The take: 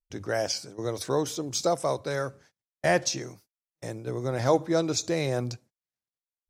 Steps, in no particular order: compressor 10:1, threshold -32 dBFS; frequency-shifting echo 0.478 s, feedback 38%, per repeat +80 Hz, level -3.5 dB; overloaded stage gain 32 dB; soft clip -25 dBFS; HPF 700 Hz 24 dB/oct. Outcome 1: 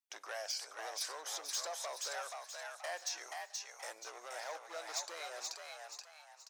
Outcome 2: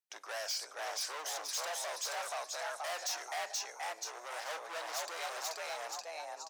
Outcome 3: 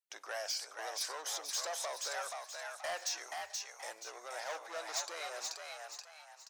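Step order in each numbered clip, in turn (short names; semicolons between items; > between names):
compressor > overloaded stage > HPF > frequency-shifting echo > soft clip; frequency-shifting echo > overloaded stage > compressor > HPF > soft clip; soft clip > compressor > HPF > overloaded stage > frequency-shifting echo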